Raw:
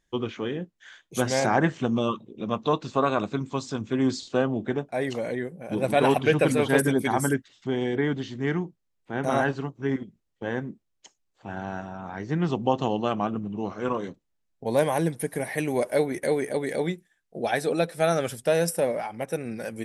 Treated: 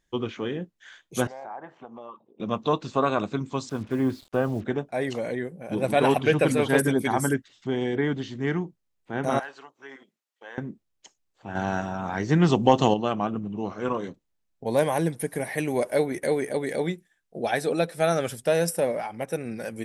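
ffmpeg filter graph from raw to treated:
ffmpeg -i in.wav -filter_complex "[0:a]asettb=1/sr,asplit=3[link_01][link_02][link_03];[link_01]atrim=end=1.274[link_04];[link_02]atrim=start=1.27:end=2.4,asetpts=PTS-STARTPTS,afade=type=in:duration=0.004:curve=qsin,afade=type=out:start_time=1.126:duration=0.004:curve=qsin,bandpass=frequency=830:width_type=q:width=2.3,acompressor=threshold=-40dB:ratio=2.5:attack=3.2:release=140:knee=1:detection=peak[link_05];[link_03]atrim=start=2.396[link_06];[link_04][link_05]acrossfade=duration=0.004:curve1=hsin:curve2=qsin[link_07];[link_07][link_06]acrossfade=duration=0.004:curve1=qsin:curve2=hsin,asettb=1/sr,asplit=3[link_08][link_09][link_10];[link_08]atrim=end=3.694[link_11];[link_09]atrim=start=3.69:end=4.64,asetpts=PTS-STARTPTS,afade=type=in:duration=0.004:curve=qsin,afade=type=out:start_time=0.946:duration=0.004:curve=qsin,lowpass=2100,asubboost=boost=9.5:cutoff=110,acrusher=bits=7:mix=0:aa=0.5[link_12];[link_10]atrim=start=4.636[link_13];[link_11][link_12]acrossfade=duration=0.004:curve1=hsin:curve2=qsin[link_14];[link_14][link_13]acrossfade=duration=0.004:curve1=qsin:curve2=hsin,asettb=1/sr,asplit=3[link_15][link_16][link_17];[link_15]atrim=end=9.394[link_18];[link_16]atrim=start=9.39:end=10.58,asetpts=PTS-STARTPTS,afade=type=in:duration=0.004:curve=qsin,afade=type=out:start_time=1.186:duration=0.004:curve=qsin,highpass=760,acompressor=threshold=-49dB:ratio=1.5:attack=3.2:release=140:knee=1:detection=peak,aeval=exprs='clip(val(0),-1,0.0299)':channel_layout=same[link_19];[link_17]atrim=start=10.576[link_20];[link_18][link_19]acrossfade=duration=0.004:curve1=hsin:curve2=qsin[link_21];[link_21][link_20]acrossfade=duration=0.004:curve1=qsin:curve2=hsin,asettb=1/sr,asplit=3[link_22][link_23][link_24];[link_22]atrim=end=11.554[link_25];[link_23]atrim=start=11.55:end=12.94,asetpts=PTS-STARTPTS,afade=type=in:duration=0.004:curve=qsin,afade=type=out:start_time=1.386:duration=0.004:curve=qsin,aemphasis=mode=production:type=cd,acontrast=64[link_26];[link_24]atrim=start=12.936[link_27];[link_25][link_26]acrossfade=duration=0.004:curve1=hsin:curve2=qsin[link_28];[link_28][link_27]acrossfade=duration=0.004:curve1=qsin:curve2=hsin" out.wav

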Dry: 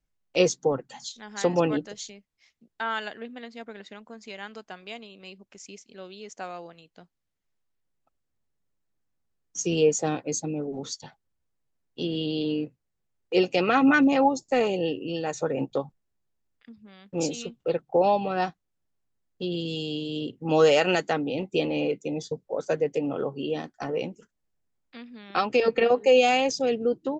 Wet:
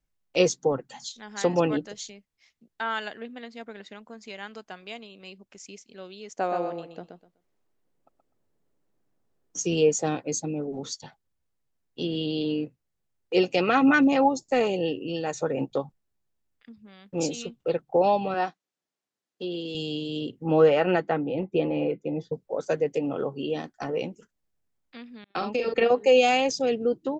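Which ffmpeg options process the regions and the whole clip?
ffmpeg -i in.wav -filter_complex "[0:a]asettb=1/sr,asplit=3[link_01][link_02][link_03];[link_01]atrim=end=6.394[link_04];[link_02]atrim=start=6.39:end=9.59,asetpts=PTS-STARTPTS,afade=type=in:duration=0.004:curve=qsin,afade=type=out:start_time=3.196:duration=0.004:curve=qsin,equalizer=frequency=410:width=0.45:gain=12.5,aecho=1:1:125|250|375:0.501|0.105|0.0221,atrim=end_sample=141120[link_05];[link_03]atrim=start=9.586[link_06];[link_04][link_05]acrossfade=duration=0.004:curve1=hsin:curve2=qsin[link_07];[link_07][link_06]acrossfade=duration=0.004:curve1=qsin:curve2=hsin,asettb=1/sr,asplit=3[link_08][link_09][link_10];[link_08]atrim=end=18.344[link_11];[link_09]atrim=start=18.34:end=19.75,asetpts=PTS-STARTPTS,afade=type=in:duration=0.004:curve=qsin,afade=type=out:start_time=1.406:duration=0.004:curve=qsin,highpass=270,lowpass=6600,acrossover=split=2500[link_12][link_13];[link_13]acompressor=threshold=-46dB:ratio=4:attack=1:release=60[link_14];[link_12][link_14]amix=inputs=2:normalize=0,highshelf=frequency=4000:gain=6.5[link_15];[link_10]atrim=start=19.746[link_16];[link_11][link_15]acrossfade=duration=0.004:curve1=hsin:curve2=qsin[link_17];[link_17][link_16]acrossfade=duration=0.004:curve1=qsin:curve2=hsin,asettb=1/sr,asplit=3[link_18][link_19][link_20];[link_18]atrim=end=20.464[link_21];[link_19]atrim=start=20.46:end=22.34,asetpts=PTS-STARTPTS,afade=type=in:duration=0.004:curve=qsin,afade=type=out:start_time=1.876:duration=0.004:curve=qsin,lowpass=1900,aecho=1:1:5.9:0.31,atrim=end_sample=82908[link_22];[link_20]atrim=start=22.336[link_23];[link_21][link_22]acrossfade=duration=0.004:curve1=hsin:curve2=qsin[link_24];[link_24][link_23]acrossfade=duration=0.004:curve1=qsin:curve2=hsin,asettb=1/sr,asplit=3[link_25][link_26][link_27];[link_25]atrim=end=25.244[link_28];[link_26]atrim=start=25.24:end=25.74,asetpts=PTS-STARTPTS,afade=type=in:duration=0.004:curve=qsin,afade=type=out:start_time=0.496:duration=0.004:curve=qsin,agate=range=-33dB:threshold=-32dB:ratio=3:release=100:detection=peak,asplit=2[link_29][link_30];[link_30]adelay=43,volume=-4.5dB[link_31];[link_29][link_31]amix=inputs=2:normalize=0,atrim=end_sample=22050,acrossover=split=540|3300[link_32][link_33][link_34];[link_32]acompressor=threshold=-28dB:ratio=4[link_35];[link_33]acompressor=threshold=-32dB:ratio=4[link_36];[link_34]acompressor=threshold=-44dB:ratio=4[link_37];[link_35][link_36][link_37]amix=inputs=3:normalize=0[link_38];[link_27]atrim=start=25.736[link_39];[link_28][link_38]acrossfade=duration=0.004:curve1=hsin:curve2=qsin[link_40];[link_40][link_39]acrossfade=duration=0.004:curve1=qsin:curve2=hsin" out.wav

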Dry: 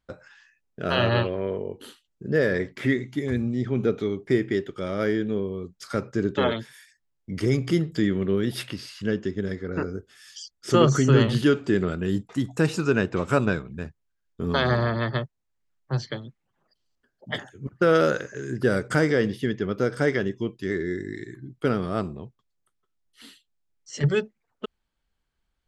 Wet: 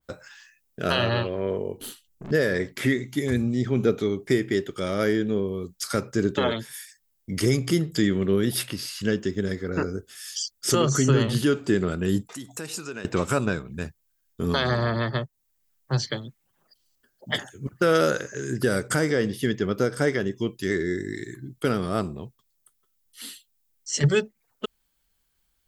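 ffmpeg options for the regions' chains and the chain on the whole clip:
ffmpeg -i in.wav -filter_complex "[0:a]asettb=1/sr,asplit=3[link_01][link_02][link_03];[link_01]atrim=end=1.774[link_04];[link_02]atrim=start=1.77:end=2.31,asetpts=PTS-STARTPTS,afade=type=in:duration=0.004:curve=qsin,afade=type=out:start_time=0.536:duration=0.004:curve=qsin,lowshelf=frequency=240:gain=11,aeval=exprs='(tanh(70.8*val(0)+0.55)-tanh(0.55))/70.8':channel_layout=same[link_05];[link_03]atrim=start=2.306[link_06];[link_04][link_05]acrossfade=duration=0.004:curve1=hsin:curve2=qsin[link_07];[link_07][link_06]acrossfade=duration=0.004:curve1=qsin:curve2=hsin,asettb=1/sr,asplit=3[link_08][link_09][link_10];[link_08]atrim=end=12.294[link_11];[link_09]atrim=start=12.29:end=13.05,asetpts=PTS-STARTPTS,afade=type=in:duration=0.004:curve=qsin,afade=type=out:start_time=0.756:duration=0.004:curve=qsin,highpass=frequency=270:poles=1,acompressor=threshold=-45dB:ratio=2:attack=3.2:release=140:knee=1:detection=peak[link_12];[link_10]atrim=start=13.046[link_13];[link_11][link_12]acrossfade=duration=0.004:curve1=hsin:curve2=qsin[link_14];[link_14][link_13]acrossfade=duration=0.004:curve1=qsin:curve2=hsin,aemphasis=mode=production:type=75fm,alimiter=limit=-12.5dB:level=0:latency=1:release=329,adynamicequalizer=threshold=0.01:dfrequency=1700:dqfactor=0.7:tfrequency=1700:tqfactor=0.7:attack=5:release=100:ratio=0.375:range=3:mode=cutabove:tftype=highshelf,volume=2.5dB" out.wav

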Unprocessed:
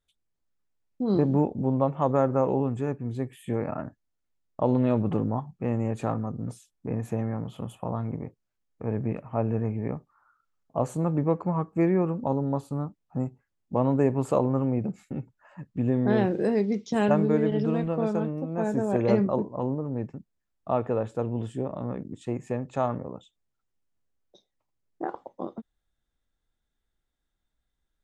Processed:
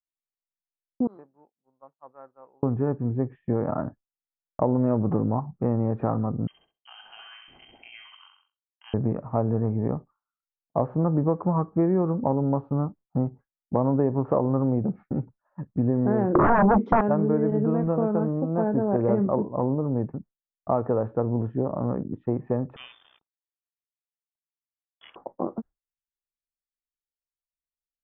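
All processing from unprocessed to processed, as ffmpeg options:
ffmpeg -i in.wav -filter_complex "[0:a]asettb=1/sr,asplit=3[link_01][link_02][link_03];[link_01]atrim=end=1.074[link_04];[link_02]atrim=start=1.07:end=2.63,asetpts=PTS-STARTPTS,afade=type=in:duration=0.004:curve=qsin,afade=type=out:start_time=1.556:duration=0.004:curve=qsin,agate=range=-33dB:threshold=-29dB:ratio=3:release=100:detection=peak,bandpass=frequency=6500:width_type=q:width=1.7[link_05];[link_03]atrim=start=2.626[link_06];[link_04][link_05]acrossfade=duration=0.004:curve1=hsin:curve2=qsin[link_07];[link_07][link_06]acrossfade=duration=0.004:curve1=qsin:curve2=hsin,asettb=1/sr,asplit=3[link_08][link_09][link_10];[link_08]atrim=end=6.474[link_11];[link_09]atrim=start=6.47:end=8.94,asetpts=PTS-STARTPTS,afade=type=in:duration=0.004:curve=qsin,afade=type=out:start_time=2.466:duration=0.004:curve=qsin,lowpass=frequency=2800:width_type=q:width=0.5098,lowpass=frequency=2800:width_type=q:width=0.6013,lowpass=frequency=2800:width_type=q:width=0.9,lowpass=frequency=2800:width_type=q:width=2.563,afreqshift=-3300,aecho=1:1:66|132|198|264|330|396:0.501|0.256|0.13|0.0665|0.0339|0.0173,atrim=end_sample=108927[link_12];[link_10]atrim=start=8.936[link_13];[link_11][link_12]acrossfade=duration=0.004:curve1=hsin:curve2=qsin[link_14];[link_14][link_13]acrossfade=duration=0.004:curve1=qsin:curve2=hsin,asettb=1/sr,asplit=3[link_15][link_16][link_17];[link_15]atrim=end=16.354[link_18];[link_16]atrim=start=16.35:end=17.01,asetpts=PTS-STARTPTS,afade=type=in:duration=0.004:curve=qsin,afade=type=out:start_time=0.656:duration=0.004:curve=qsin,highpass=frequency=250:width_type=q:width=2.2,aeval=exprs='0.299*sin(PI/2*5.01*val(0)/0.299)':channel_layout=same[link_19];[link_17]atrim=start=17.006[link_20];[link_18][link_19]acrossfade=duration=0.004:curve1=hsin:curve2=qsin[link_21];[link_21][link_20]acrossfade=duration=0.004:curve1=qsin:curve2=hsin,asettb=1/sr,asplit=3[link_22][link_23][link_24];[link_22]atrim=end=22.764[link_25];[link_23]atrim=start=22.76:end=25.16,asetpts=PTS-STARTPTS,afade=type=in:duration=0.004:curve=qsin,afade=type=out:start_time=2.396:duration=0.004:curve=qsin,aeval=exprs='sgn(val(0))*max(abs(val(0))-0.00316,0)':channel_layout=same,lowpass=frequency=3100:width_type=q:width=0.5098,lowpass=frequency=3100:width_type=q:width=0.6013,lowpass=frequency=3100:width_type=q:width=0.9,lowpass=frequency=3100:width_type=q:width=2.563,afreqshift=-3700[link_26];[link_24]atrim=start=25.156[link_27];[link_25][link_26]acrossfade=duration=0.004:curve1=hsin:curve2=qsin[link_28];[link_28][link_27]acrossfade=duration=0.004:curve1=qsin:curve2=hsin,agate=range=-33dB:threshold=-42dB:ratio=3:detection=peak,lowpass=frequency=1400:width=0.5412,lowpass=frequency=1400:width=1.3066,acompressor=threshold=-26dB:ratio=3,volume=6dB" out.wav

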